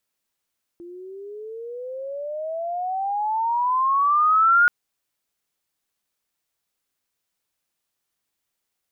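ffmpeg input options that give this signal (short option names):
-f lavfi -i "aevalsrc='pow(10,(-12+24.5*(t/3.88-1))/20)*sin(2*PI*341*3.88/(25*log(2)/12)*(exp(25*log(2)/12*t/3.88)-1))':d=3.88:s=44100"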